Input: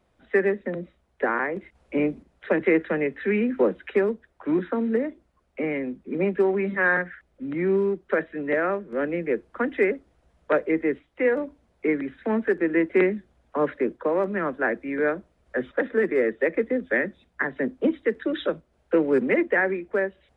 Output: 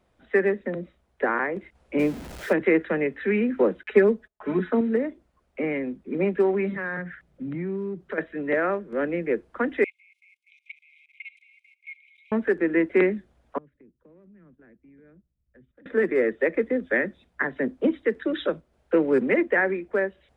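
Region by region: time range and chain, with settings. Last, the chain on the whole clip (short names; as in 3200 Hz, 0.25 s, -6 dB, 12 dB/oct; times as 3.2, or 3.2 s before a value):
1.99–2.53 zero-crossing step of -34 dBFS + notch 1100 Hz
3.83–4.81 gate -58 dBFS, range -26 dB + comb 4.7 ms, depth 87%
6.76–8.18 bell 150 Hz +11.5 dB 1 oct + compressor 3:1, threshold -30 dBFS
9.84–12.32 regenerating reverse delay 0.111 s, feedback 72%, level -10.5 dB + brick-wall FIR high-pass 2100 Hz + level quantiser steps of 19 dB
13.58–15.86 EQ curve 130 Hz 0 dB, 820 Hz -28 dB, 2500 Hz -20 dB + compressor, threshold -51 dBFS + gate -57 dBFS, range -10 dB
whole clip: dry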